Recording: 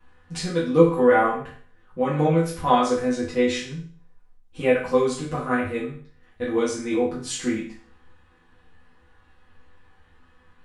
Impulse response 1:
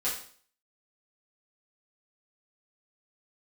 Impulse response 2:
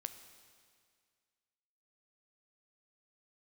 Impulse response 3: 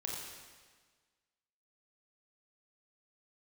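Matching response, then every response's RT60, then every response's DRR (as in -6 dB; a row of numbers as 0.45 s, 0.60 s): 1; 0.50 s, 2.0 s, 1.5 s; -10.0 dB, 9.0 dB, -3.0 dB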